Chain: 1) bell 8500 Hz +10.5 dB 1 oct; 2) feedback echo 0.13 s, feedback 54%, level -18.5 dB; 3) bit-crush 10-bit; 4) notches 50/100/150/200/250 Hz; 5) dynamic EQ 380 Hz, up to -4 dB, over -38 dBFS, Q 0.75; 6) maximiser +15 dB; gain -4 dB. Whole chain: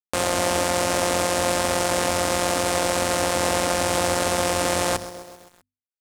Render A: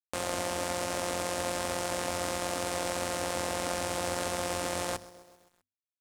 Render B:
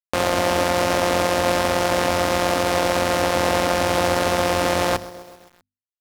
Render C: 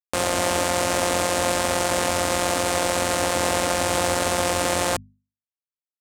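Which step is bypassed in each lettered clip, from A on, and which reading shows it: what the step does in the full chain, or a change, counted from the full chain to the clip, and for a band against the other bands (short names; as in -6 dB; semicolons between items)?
6, crest factor change +3.0 dB; 1, 8 kHz band -8.0 dB; 2, momentary loudness spread change -1 LU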